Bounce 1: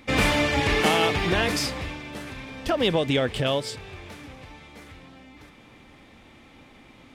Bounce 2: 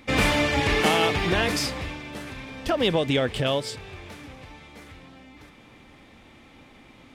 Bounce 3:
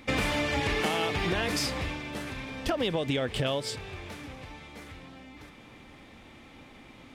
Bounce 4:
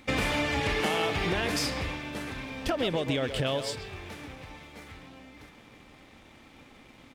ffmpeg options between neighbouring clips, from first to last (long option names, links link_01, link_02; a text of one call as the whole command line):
ffmpeg -i in.wav -af anull out.wav
ffmpeg -i in.wav -af "acompressor=threshold=-25dB:ratio=6" out.wav
ffmpeg -i in.wav -filter_complex "[0:a]aeval=exprs='sgn(val(0))*max(abs(val(0))-0.00112,0)':channel_layout=same,asplit=2[link_01][link_02];[link_02]adelay=130,highpass=300,lowpass=3400,asoftclip=type=hard:threshold=-25dB,volume=-7dB[link_03];[link_01][link_03]amix=inputs=2:normalize=0" out.wav